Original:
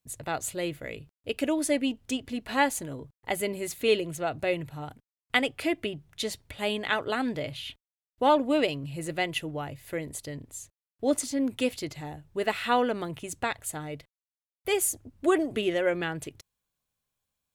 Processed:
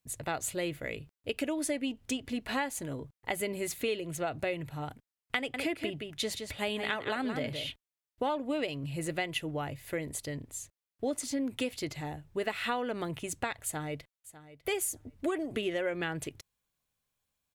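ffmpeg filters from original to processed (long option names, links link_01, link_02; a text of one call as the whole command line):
ffmpeg -i in.wav -filter_complex "[0:a]asettb=1/sr,asplit=3[link_01][link_02][link_03];[link_01]atrim=end=5.374[link_04];[link_02]atrim=start=5.37:end=7.69,asetpts=PTS-STARTPTS,afade=type=in:duration=0.004:curve=qsin,afade=type=out:start_time=2.316:duration=0.004:curve=qsin,aecho=1:1:169:0.355,atrim=end_sample=102312[link_05];[link_03]atrim=start=7.686[link_06];[link_04][link_05]acrossfade=duration=0.004:curve1=hsin:curve2=qsin[link_07];[link_07][link_06]acrossfade=duration=0.004:curve1=qsin:curve2=hsin,asplit=2[link_08][link_09];[link_09]afade=type=in:start_time=13.64:duration=0.01,afade=type=out:start_time=14.71:duration=0.01,aecho=0:1:600|1200:0.149624|0.0224435[link_10];[link_08][link_10]amix=inputs=2:normalize=0,equalizer=frequency=2100:width_type=o:width=0.77:gain=2,acompressor=threshold=-29dB:ratio=6" out.wav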